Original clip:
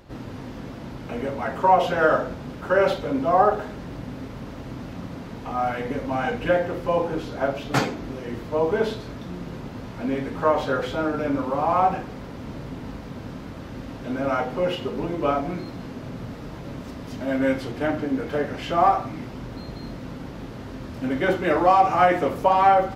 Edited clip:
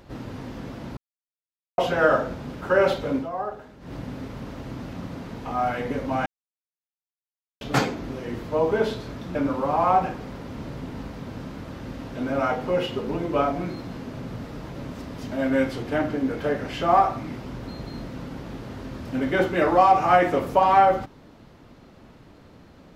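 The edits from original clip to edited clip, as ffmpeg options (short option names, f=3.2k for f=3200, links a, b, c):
-filter_complex "[0:a]asplit=8[a][b][c][d][e][f][g][h];[a]atrim=end=0.97,asetpts=PTS-STARTPTS,afade=t=out:st=0.966:d=0.004:c=hsin[i];[b]atrim=start=0.97:end=1.78,asetpts=PTS-STARTPTS,volume=0[j];[c]atrim=start=1.78:end=3.29,asetpts=PTS-STARTPTS,afade=t=in:d=0.004:c=hsin,afade=t=out:st=1.37:d=0.14:silence=0.237137[k];[d]atrim=start=3.29:end=3.8,asetpts=PTS-STARTPTS,volume=-12.5dB[l];[e]atrim=start=3.8:end=6.26,asetpts=PTS-STARTPTS,afade=t=in:d=0.14:silence=0.237137,afade=t=out:st=2.456:d=0.004:c=hsin[m];[f]atrim=start=6.26:end=7.61,asetpts=PTS-STARTPTS,volume=0[n];[g]atrim=start=7.61:end=9.352,asetpts=PTS-STARTPTS,afade=t=in:d=0.004:c=hsin[o];[h]atrim=start=11.238[p];[i][j][k][l][m][n][o]concat=n=7:v=0:a=1[q];[q][p]acrossfade=d=0.004:c1=hsin:c2=hsin"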